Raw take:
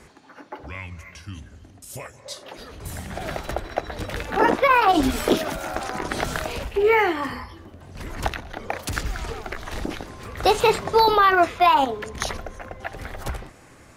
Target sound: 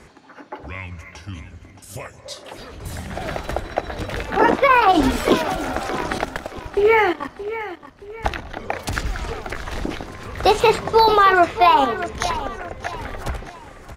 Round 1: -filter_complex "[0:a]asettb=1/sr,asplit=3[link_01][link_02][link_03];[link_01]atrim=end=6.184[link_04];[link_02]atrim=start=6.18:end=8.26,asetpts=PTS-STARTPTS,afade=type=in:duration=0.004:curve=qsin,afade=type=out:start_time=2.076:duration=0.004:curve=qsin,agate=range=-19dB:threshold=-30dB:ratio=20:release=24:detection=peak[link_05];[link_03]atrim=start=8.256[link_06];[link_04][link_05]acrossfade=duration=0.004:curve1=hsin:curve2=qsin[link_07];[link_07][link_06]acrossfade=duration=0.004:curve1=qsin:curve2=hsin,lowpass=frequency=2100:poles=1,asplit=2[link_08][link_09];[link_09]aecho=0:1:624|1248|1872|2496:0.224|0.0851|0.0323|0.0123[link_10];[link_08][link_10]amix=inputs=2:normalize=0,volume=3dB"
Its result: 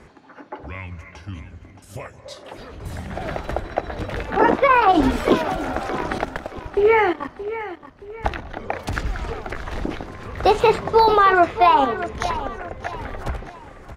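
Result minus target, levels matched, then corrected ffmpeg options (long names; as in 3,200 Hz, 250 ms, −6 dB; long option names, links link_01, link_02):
8,000 Hz band −6.5 dB
-filter_complex "[0:a]asettb=1/sr,asplit=3[link_01][link_02][link_03];[link_01]atrim=end=6.184[link_04];[link_02]atrim=start=6.18:end=8.26,asetpts=PTS-STARTPTS,afade=type=in:duration=0.004:curve=qsin,afade=type=out:start_time=2.076:duration=0.004:curve=qsin,agate=range=-19dB:threshold=-30dB:ratio=20:release=24:detection=peak[link_05];[link_03]atrim=start=8.256[link_06];[link_04][link_05]acrossfade=duration=0.004:curve1=hsin:curve2=qsin[link_07];[link_07][link_06]acrossfade=duration=0.004:curve1=qsin:curve2=hsin,lowpass=frequency=6600:poles=1,asplit=2[link_08][link_09];[link_09]aecho=0:1:624|1248|1872|2496:0.224|0.0851|0.0323|0.0123[link_10];[link_08][link_10]amix=inputs=2:normalize=0,volume=3dB"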